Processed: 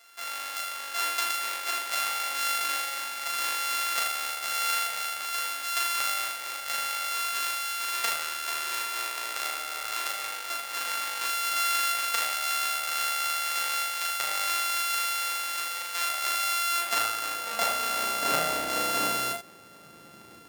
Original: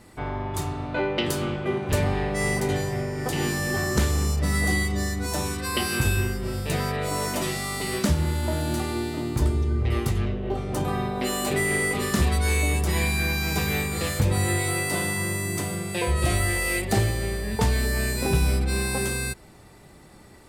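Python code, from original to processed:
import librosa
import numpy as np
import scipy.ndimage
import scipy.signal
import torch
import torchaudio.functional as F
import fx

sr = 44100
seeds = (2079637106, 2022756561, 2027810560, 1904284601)

y = np.r_[np.sort(x[:len(x) // 64 * 64].reshape(-1, 64), axis=1).ravel(), x[len(x) // 64 * 64:]]
y = fx.filter_sweep_highpass(y, sr, from_hz=1400.0, to_hz=180.0, start_s=16.41, end_s=20.31, q=0.71)
y = fx.room_early_taps(y, sr, ms=(37, 79), db=(-3.5, -8.0))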